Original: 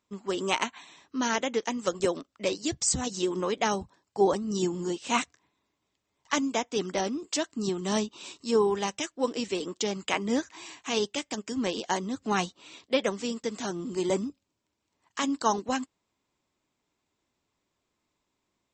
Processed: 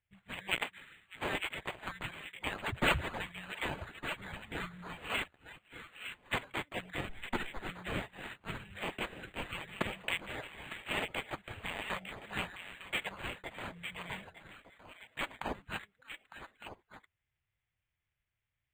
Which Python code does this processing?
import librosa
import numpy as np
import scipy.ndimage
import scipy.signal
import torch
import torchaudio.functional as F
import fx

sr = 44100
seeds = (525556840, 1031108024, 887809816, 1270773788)

y = fx.lower_of_two(x, sr, delay_ms=1.7, at=(7.09, 7.7))
y = fx.env_lowpass(y, sr, base_hz=3000.0, full_db=-25.0)
y = scipy.signal.sosfilt(scipy.signal.cheby2(4, 40, [230.0, 1100.0], 'bandstop', fs=sr, output='sos'), y)
y = fx.echo_stepped(y, sr, ms=302, hz=430.0, octaves=1.4, feedback_pct=70, wet_db=-0.5)
y = np.interp(np.arange(len(y)), np.arange(len(y))[::8], y[::8])
y = y * librosa.db_to_amplitude(1.0)